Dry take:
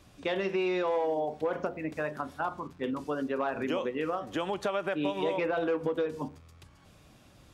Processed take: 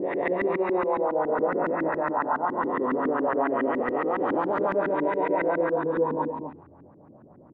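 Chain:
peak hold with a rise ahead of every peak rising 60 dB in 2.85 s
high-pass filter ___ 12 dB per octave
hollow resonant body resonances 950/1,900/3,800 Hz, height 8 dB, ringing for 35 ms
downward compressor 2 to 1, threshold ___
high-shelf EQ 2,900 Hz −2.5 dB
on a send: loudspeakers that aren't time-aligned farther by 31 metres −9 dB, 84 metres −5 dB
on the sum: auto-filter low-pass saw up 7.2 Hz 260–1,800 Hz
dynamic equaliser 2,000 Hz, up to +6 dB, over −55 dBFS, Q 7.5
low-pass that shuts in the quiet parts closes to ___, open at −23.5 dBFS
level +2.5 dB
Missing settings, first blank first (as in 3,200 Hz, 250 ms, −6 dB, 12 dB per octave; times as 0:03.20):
150 Hz, −33 dBFS, 600 Hz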